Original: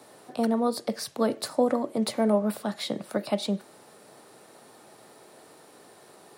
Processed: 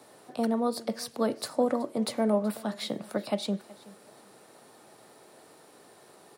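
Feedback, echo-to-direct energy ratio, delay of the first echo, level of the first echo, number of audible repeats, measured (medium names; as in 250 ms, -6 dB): 25%, -20.5 dB, 375 ms, -21.0 dB, 2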